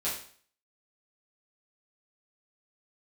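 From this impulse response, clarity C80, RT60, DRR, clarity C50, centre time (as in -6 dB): 9.5 dB, 0.50 s, -9.5 dB, 4.5 dB, 37 ms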